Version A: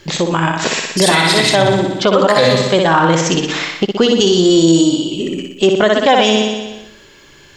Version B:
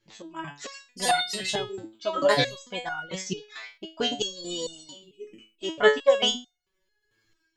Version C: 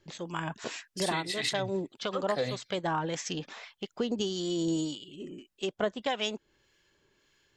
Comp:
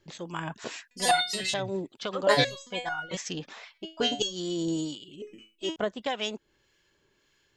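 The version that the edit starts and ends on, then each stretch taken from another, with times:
C
0:00.91–0:01.54: punch in from B
0:02.27–0:03.17: punch in from B
0:03.77–0:04.34: punch in from B, crossfade 0.10 s
0:05.22–0:05.76: punch in from B
not used: A

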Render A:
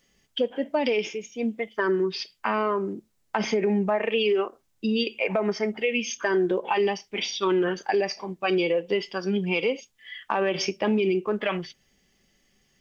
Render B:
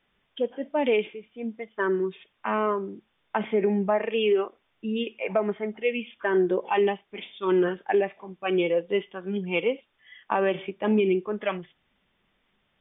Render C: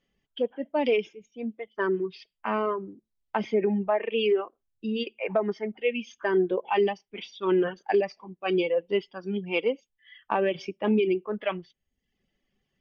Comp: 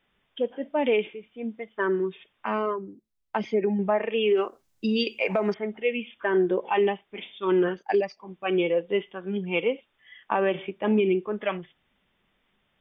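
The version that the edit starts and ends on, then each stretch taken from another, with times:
B
0:02.46–0:03.79: punch in from C
0:04.37–0:05.54: punch in from A
0:07.79–0:08.26: punch in from C, crossfade 0.10 s

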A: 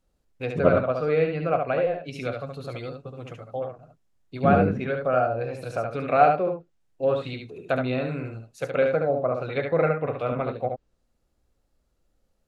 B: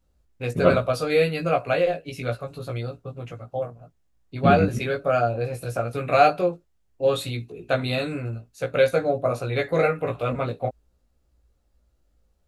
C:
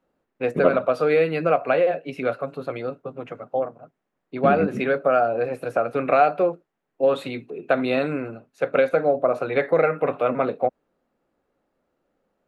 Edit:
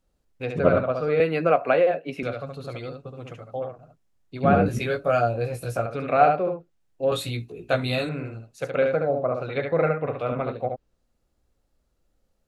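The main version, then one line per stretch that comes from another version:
A
0:01.20–0:02.23: punch in from C
0:04.66–0:05.86: punch in from B
0:07.12–0:08.09: punch in from B

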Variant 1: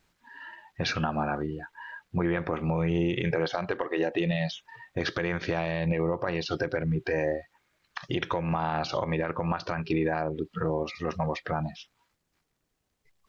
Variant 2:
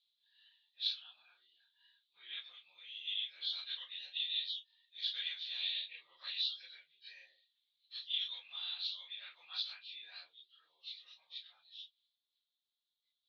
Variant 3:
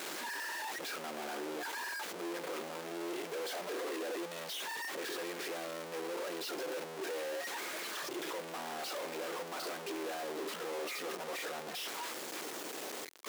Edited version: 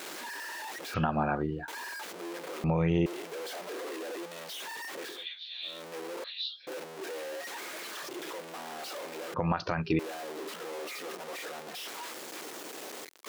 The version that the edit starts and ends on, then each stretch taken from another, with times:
3
0:00.94–0:01.68: punch in from 1
0:02.64–0:03.06: punch in from 1
0:05.15–0:05.73: punch in from 2, crossfade 0.24 s
0:06.24–0:06.67: punch in from 2
0:09.34–0:09.99: punch in from 1

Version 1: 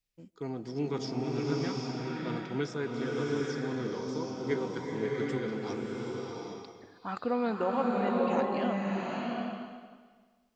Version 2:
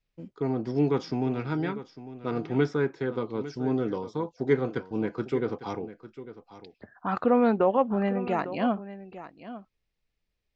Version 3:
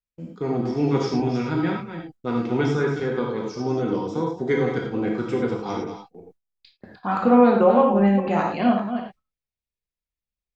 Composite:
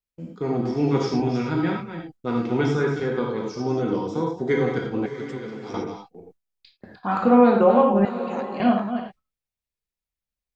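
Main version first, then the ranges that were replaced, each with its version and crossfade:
3
0:05.06–0:05.74: punch in from 1
0:08.05–0:08.60: punch in from 1
not used: 2

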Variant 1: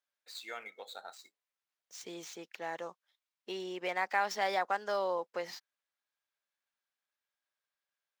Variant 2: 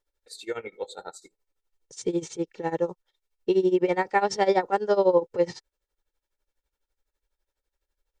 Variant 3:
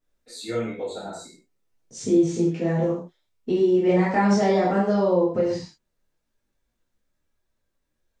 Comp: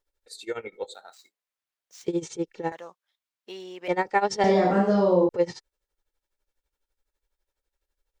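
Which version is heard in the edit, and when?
2
0:00.94–0:02.08: punch in from 1
0:02.72–0:03.88: punch in from 1
0:04.44–0:05.29: punch in from 3

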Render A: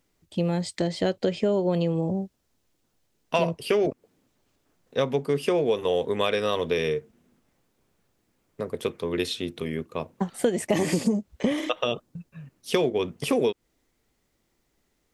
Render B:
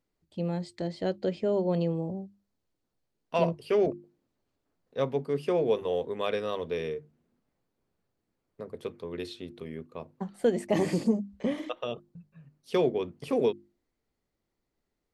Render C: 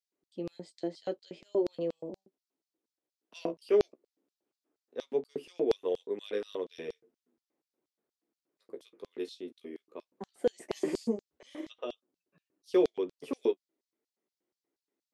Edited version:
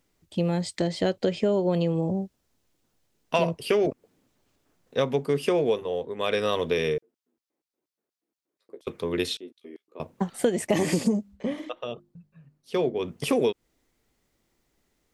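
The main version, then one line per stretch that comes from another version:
A
0:05.76–0:06.25: punch in from B, crossfade 0.16 s
0:06.98–0:08.87: punch in from C
0:09.37–0:10.00: punch in from C
0:11.30–0:13.03: punch in from B, crossfade 0.16 s

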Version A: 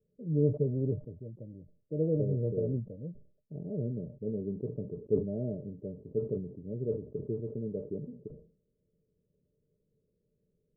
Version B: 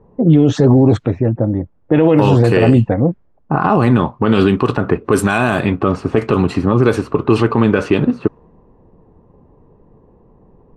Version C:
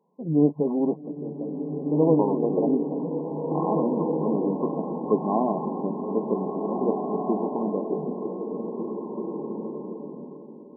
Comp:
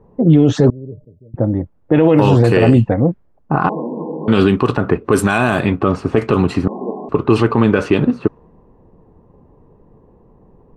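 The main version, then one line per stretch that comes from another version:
B
0:00.70–0:01.34: punch in from A
0:03.69–0:04.28: punch in from C
0:06.68–0:07.09: punch in from C

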